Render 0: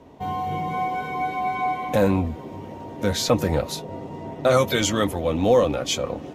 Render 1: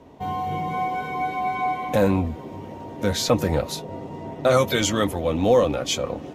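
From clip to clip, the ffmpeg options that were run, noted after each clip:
-af anull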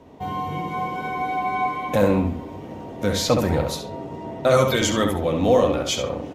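-filter_complex "[0:a]asplit=2[a][b];[b]adelay=68,lowpass=f=3.4k:p=1,volume=-4.5dB,asplit=2[c][d];[d]adelay=68,lowpass=f=3.4k:p=1,volume=0.35,asplit=2[e][f];[f]adelay=68,lowpass=f=3.4k:p=1,volume=0.35,asplit=2[g][h];[h]adelay=68,lowpass=f=3.4k:p=1,volume=0.35[i];[a][c][e][g][i]amix=inputs=5:normalize=0"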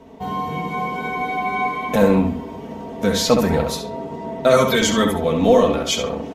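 -af "aecho=1:1:4.5:0.63,volume=2dB"

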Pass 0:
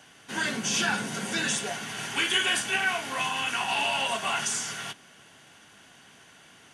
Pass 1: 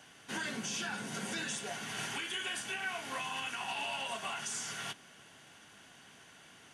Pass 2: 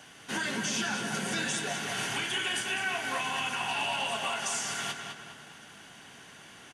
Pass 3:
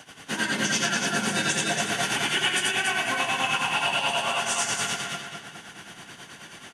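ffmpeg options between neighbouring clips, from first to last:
-af "alimiter=level_in=0.5dB:limit=-24dB:level=0:latency=1:release=451,volume=-0.5dB,volume=-3.5dB"
-filter_complex "[0:a]asplit=2[a][b];[b]adelay=204,lowpass=f=4.9k:p=1,volume=-5dB,asplit=2[c][d];[d]adelay=204,lowpass=f=4.9k:p=1,volume=0.46,asplit=2[e][f];[f]adelay=204,lowpass=f=4.9k:p=1,volume=0.46,asplit=2[g][h];[h]adelay=204,lowpass=f=4.9k:p=1,volume=0.46,asplit=2[i][j];[j]adelay=204,lowpass=f=4.9k:p=1,volume=0.46,asplit=2[k][l];[l]adelay=204,lowpass=f=4.9k:p=1,volume=0.46[m];[a][c][e][g][i][k][m]amix=inputs=7:normalize=0,volume=5.5dB"
-af "tremolo=f=9.3:d=0.74,aecho=1:1:87.46|285.7:0.891|0.631,volume=6.5dB"

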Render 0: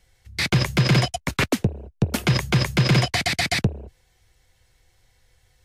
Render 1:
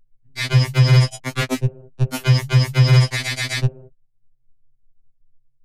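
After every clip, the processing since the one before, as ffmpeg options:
-af "anlmdn=0.158,lowshelf=f=110:t=q:w=1.5:g=10,afftfilt=real='re*2.45*eq(mod(b,6),0)':imag='im*2.45*eq(mod(b,6),0)':win_size=2048:overlap=0.75,volume=2dB"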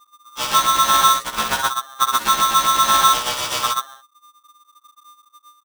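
-filter_complex "[0:a]tremolo=f=4.5:d=0.37,asplit=2[a][b];[b]aecho=0:1:67.06|131.2:0.562|0.794[c];[a][c]amix=inputs=2:normalize=0,aeval=exprs='val(0)*sgn(sin(2*PI*1200*n/s))':c=same"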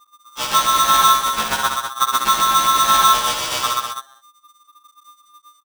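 -af "aecho=1:1:198:0.422"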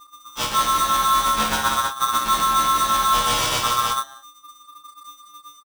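-filter_complex "[0:a]lowshelf=f=240:g=8.5,areverse,acompressor=threshold=-24dB:ratio=6,areverse,asplit=2[a][b];[b]adelay=27,volume=-5.5dB[c];[a][c]amix=inputs=2:normalize=0,volume=5dB"

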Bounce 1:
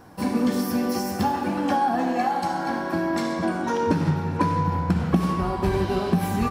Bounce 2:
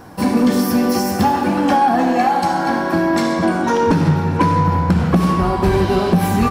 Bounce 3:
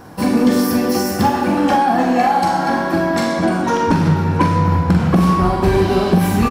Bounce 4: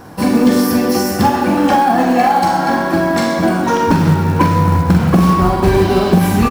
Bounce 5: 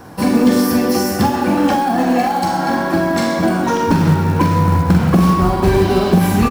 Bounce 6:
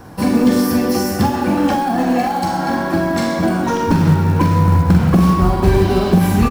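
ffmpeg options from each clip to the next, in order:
-af "aeval=exprs='0.447*sin(PI/2*1.78*val(0)/0.447)':c=same"
-filter_complex "[0:a]asplit=2[a][b];[b]adelay=44,volume=-6.5dB[c];[a][c]amix=inputs=2:normalize=0"
-af "acrusher=bits=7:mode=log:mix=0:aa=0.000001,volume=2.5dB"
-filter_complex "[0:a]acrossover=split=430|3000[a][b][c];[b]acompressor=threshold=-15dB:ratio=6[d];[a][d][c]amix=inputs=3:normalize=0,volume=-1dB"
-af "lowshelf=f=110:g=7.5,volume=-2dB"

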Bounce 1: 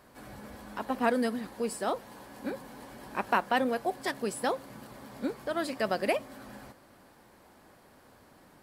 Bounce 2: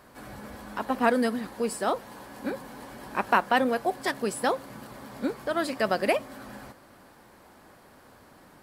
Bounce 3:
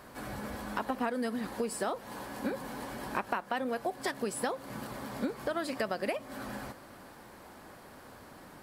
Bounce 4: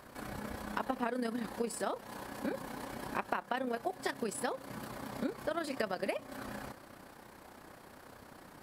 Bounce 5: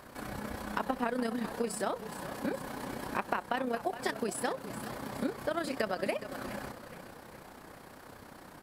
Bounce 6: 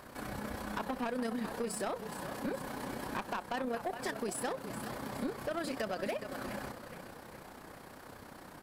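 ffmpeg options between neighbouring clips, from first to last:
-af "equalizer=f=1.3k:w=1.5:g=2,volume=3.5dB"
-af "acompressor=threshold=-32dB:ratio=8,volume=2.5dB"
-af "tremolo=f=31:d=0.571"
-filter_complex "[0:a]asplit=6[a][b][c][d][e][f];[b]adelay=417,afreqshift=-32,volume=-12.5dB[g];[c]adelay=834,afreqshift=-64,volume=-19.1dB[h];[d]adelay=1251,afreqshift=-96,volume=-25.6dB[i];[e]adelay=1668,afreqshift=-128,volume=-32.2dB[j];[f]adelay=2085,afreqshift=-160,volume=-38.7dB[k];[a][g][h][i][j][k]amix=inputs=6:normalize=0,volume=2.5dB"
-af "asoftclip=type=tanh:threshold=-29dB"

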